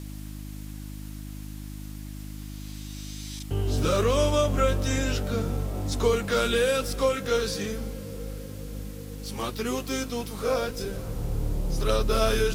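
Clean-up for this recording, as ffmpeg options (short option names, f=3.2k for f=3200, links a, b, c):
-af "bandreject=f=51.2:t=h:w=4,bandreject=f=102.4:t=h:w=4,bandreject=f=153.6:t=h:w=4,bandreject=f=204.8:t=h:w=4,bandreject=f=256:t=h:w=4,bandreject=f=307.2:t=h:w=4,afwtdn=0.0032"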